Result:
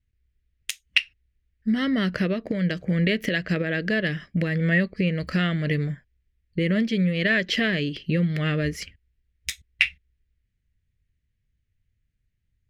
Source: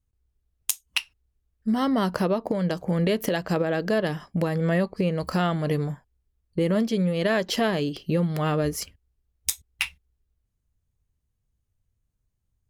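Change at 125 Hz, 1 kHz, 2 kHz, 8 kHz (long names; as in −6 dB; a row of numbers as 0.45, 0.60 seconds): +2.0, −8.5, +7.5, −7.5 decibels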